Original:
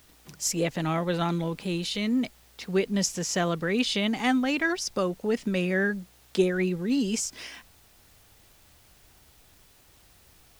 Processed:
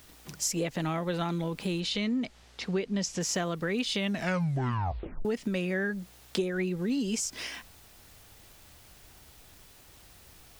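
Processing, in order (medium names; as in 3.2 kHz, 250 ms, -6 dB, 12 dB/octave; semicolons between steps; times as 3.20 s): 1.80–3.21 s: low-pass 6.3 kHz 12 dB/octave; 3.98 s: tape stop 1.27 s; compression 4:1, threshold -31 dBFS, peak gain reduction 12 dB; trim +3 dB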